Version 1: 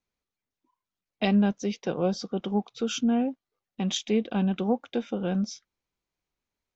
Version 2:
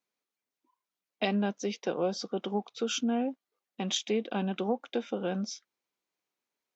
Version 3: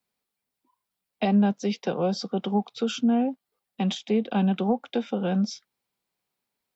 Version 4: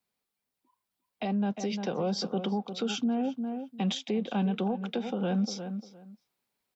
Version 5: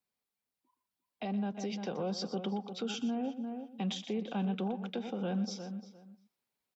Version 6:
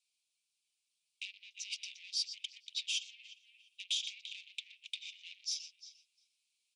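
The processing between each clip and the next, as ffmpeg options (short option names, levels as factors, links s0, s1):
-af "highpass=270,acompressor=threshold=0.0562:ratio=2.5"
-filter_complex "[0:a]bass=f=250:g=10,treble=f=4000:g=5,acrossover=split=210|550|1400[s0][s1][s2][s3];[s3]alimiter=level_in=1.06:limit=0.0631:level=0:latency=1:release=423,volume=0.944[s4];[s0][s1][s2][s4]amix=inputs=4:normalize=0,equalizer=f=315:t=o:w=0.33:g=-6,equalizer=f=800:t=o:w=0.33:g=4,equalizer=f=6300:t=o:w=0.33:g=-9,volume=1.41"
-filter_complex "[0:a]asplit=2[s0][s1];[s1]adelay=350,lowpass=f=2300:p=1,volume=0.224,asplit=2[s2][s3];[s3]adelay=350,lowpass=f=2300:p=1,volume=0.21[s4];[s0][s2][s4]amix=inputs=3:normalize=0,alimiter=limit=0.075:level=0:latency=1:release=136,dynaudnorm=f=560:g=5:m=1.41,volume=0.794"
-af "aecho=1:1:121:0.2,volume=0.531"
-af "asoftclip=type=tanh:threshold=0.0141,asuperpass=centerf=5100:order=20:qfactor=0.66,volume=3.16"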